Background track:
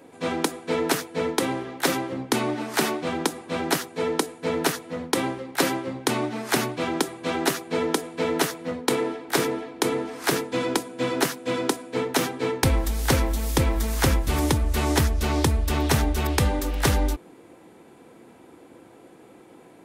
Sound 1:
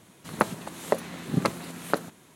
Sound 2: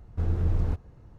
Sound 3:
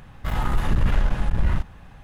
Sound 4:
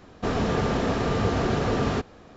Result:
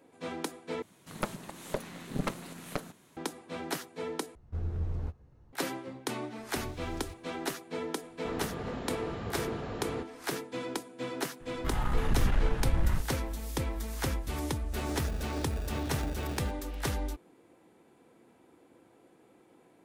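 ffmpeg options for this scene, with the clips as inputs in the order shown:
-filter_complex "[2:a]asplit=2[a][b];[4:a]asplit=2[c][d];[0:a]volume=-11.5dB[e];[1:a]aeval=exprs='(tanh(11.2*val(0)+0.7)-tanh(0.7))/11.2':c=same[f];[a]asplit=2[g][h];[h]adelay=14,volume=-7.5dB[i];[g][i]amix=inputs=2:normalize=0[j];[b]aexciter=amount=11.7:drive=3.8:freq=2.2k[k];[c]equalizer=f=5.8k:t=o:w=0.48:g=-7.5[l];[d]acrusher=samples=42:mix=1:aa=0.000001[m];[e]asplit=3[n][o][p];[n]atrim=end=0.824[q];[f]atrim=end=2.35,asetpts=PTS-STARTPTS,volume=-2dB[r];[o]atrim=start=3.166:end=4.354[s];[j]atrim=end=1.18,asetpts=PTS-STARTPTS,volume=-9dB[t];[p]atrim=start=5.526[u];[k]atrim=end=1.18,asetpts=PTS-STARTPTS,volume=-17.5dB,afade=t=in:d=0.004:c=hsin,afade=t=out:st=1.176:d=0.004:c=hsin,adelay=6380[v];[l]atrim=end=2.36,asetpts=PTS-STARTPTS,volume=-14dB,afade=t=in:d=0.004:c=hsin,afade=t=out:st=2.356:d=0.004:c=hsin,adelay=353682S[w];[3:a]atrim=end=2.03,asetpts=PTS-STARTPTS,volume=-7dB,afade=t=in:d=0.004:c=hsin,afade=t=out:st=2.026:d=0.004:c=hsin,adelay=11400[x];[m]atrim=end=2.36,asetpts=PTS-STARTPTS,volume=-17.5dB,afade=t=in:d=0.004:c=hsin,afade=t=out:st=2.356:d=0.004:c=hsin,adelay=14500[y];[q][r]acrossfade=d=0.004:c1=hsin:c2=hsin[z];[z][s]acrossfade=d=0.004:c1=hsin:c2=hsin[aa];[aa][t]acrossfade=d=0.004:c1=hsin:c2=hsin[ab];[ab][u]acrossfade=d=0.004:c1=hsin:c2=hsin[ac];[ac][v][w][x][y]amix=inputs=5:normalize=0"

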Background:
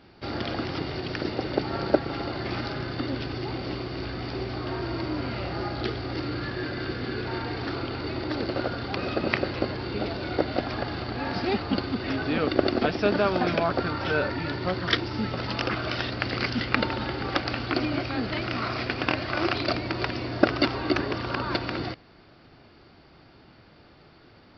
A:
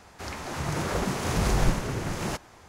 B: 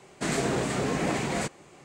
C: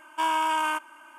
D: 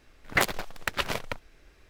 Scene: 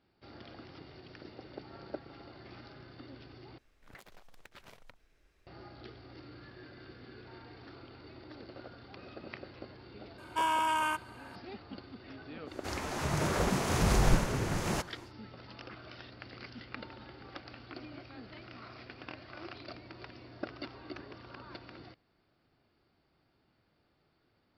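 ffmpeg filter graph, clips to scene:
-filter_complex "[0:a]volume=-20dB[a];[4:a]acompressor=threshold=-38dB:ratio=6:attack=3.2:release=140:knee=1:detection=peak[b];[a]asplit=2[c][d];[c]atrim=end=3.584[e];[b]atrim=end=1.89,asetpts=PTS-STARTPTS,volume=-12.5dB[f];[d]atrim=start=5.466[g];[3:a]atrim=end=1.18,asetpts=PTS-STARTPTS,volume=-4.5dB,afade=t=in:d=0.004:c=hsin,afade=t=out:st=1.176:d=0.004:c=hsin,adelay=448938S[h];[1:a]atrim=end=2.68,asetpts=PTS-STARTPTS,volume=-2dB,afade=t=in:d=0.1,afade=t=out:st=2.58:d=0.1,adelay=12450[i];[e][f]acrossfade=d=0.004:c1=hsin:c2=hsin[j];[j][g]acrossfade=d=0.004:c1=hsin:c2=hsin[k];[k][h][i]amix=inputs=3:normalize=0"

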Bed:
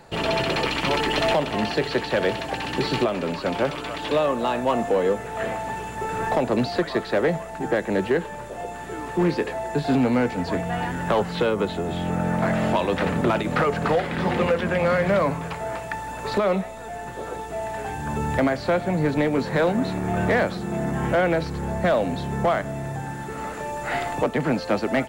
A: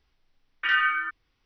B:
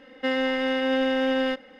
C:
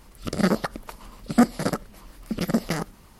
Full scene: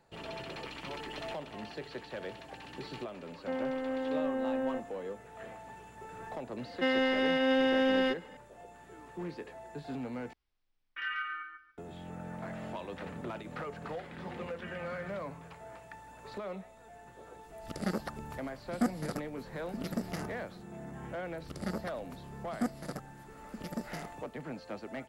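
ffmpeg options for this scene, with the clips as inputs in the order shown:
-filter_complex "[2:a]asplit=2[a][b];[1:a]asplit=2[c][d];[3:a]asplit=2[e][f];[0:a]volume=-19dB[g];[a]lowpass=1.1k[h];[c]aecho=1:1:141|282|423:0.562|0.124|0.0272[i];[d]acompressor=threshold=-34dB:ratio=6:attack=3.2:release=140:knee=1:detection=peak[j];[g]asplit=2[k][l];[k]atrim=end=10.334[m];[i]atrim=end=1.45,asetpts=PTS-STARTPTS,volume=-14dB[n];[l]atrim=start=11.776[o];[h]atrim=end=1.79,asetpts=PTS-STARTPTS,volume=-8.5dB,afade=t=in:d=0.004:c=hsin,afade=t=out:st=1.786:d=0.004:c=hsin,adelay=3240[p];[b]atrim=end=1.79,asetpts=PTS-STARTPTS,volume=-3.5dB,afade=t=in:d=0.004:c=hsin,afade=t=out:st=1.786:d=0.004:c=hsin,adelay=290178S[q];[j]atrim=end=1.45,asetpts=PTS-STARTPTS,volume=-12dB,afade=t=in:d=0.004:c=hsin,afade=t=out:st=1.446:d=0.004:c=hsin,adelay=13990[r];[e]atrim=end=3.19,asetpts=PTS-STARTPTS,volume=-12.5dB,afade=t=in:d=0.004:c=hsin,afade=t=out:st=3.186:d=0.004:c=hsin,adelay=17430[s];[f]atrim=end=3.19,asetpts=PTS-STARTPTS,volume=-15.5dB,afade=t=in:d=0.004:c=hsin,afade=t=out:st=3.186:d=0.004:c=hsin,adelay=21230[t];[m][n]acrossfade=d=0.004:c1=hsin:c2=hsin[u];[u][o]acrossfade=d=0.004:c1=hsin:c2=hsin[v];[v][p][q][r][s][t]amix=inputs=6:normalize=0"

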